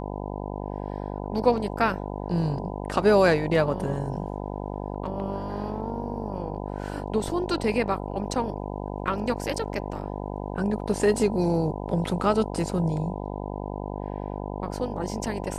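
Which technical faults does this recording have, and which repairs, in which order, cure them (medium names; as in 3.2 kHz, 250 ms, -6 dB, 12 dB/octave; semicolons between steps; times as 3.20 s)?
buzz 50 Hz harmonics 20 -33 dBFS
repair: de-hum 50 Hz, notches 20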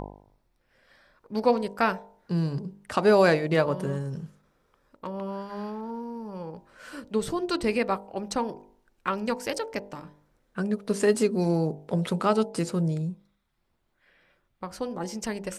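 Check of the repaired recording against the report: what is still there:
nothing left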